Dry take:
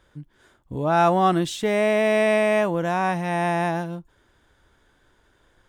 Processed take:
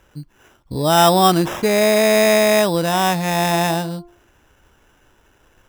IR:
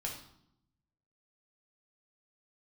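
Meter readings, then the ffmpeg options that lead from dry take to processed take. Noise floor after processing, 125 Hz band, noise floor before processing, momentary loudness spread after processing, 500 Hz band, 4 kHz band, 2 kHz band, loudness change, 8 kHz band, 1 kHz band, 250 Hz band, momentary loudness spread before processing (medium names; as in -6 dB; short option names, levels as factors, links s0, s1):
-57 dBFS, +5.5 dB, -63 dBFS, 10 LU, +5.0 dB, +13.5 dB, +4.5 dB, +5.5 dB, +15.5 dB, +5.0 dB, +5.5 dB, 10 LU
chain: -af "acrusher=samples=10:mix=1:aa=0.000001,bandreject=f=348.2:t=h:w=4,bandreject=f=696.4:t=h:w=4,bandreject=f=1044.6:t=h:w=4,bandreject=f=1392.8:t=h:w=4,volume=1.88"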